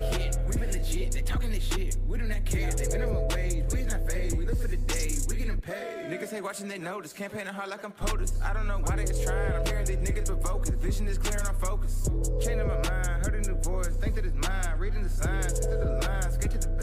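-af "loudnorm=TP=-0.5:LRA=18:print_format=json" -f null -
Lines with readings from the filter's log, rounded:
"input_i" : "-31.0",
"input_tp" : "-17.3",
"input_lra" : "2.1",
"input_thresh" : "-41.0",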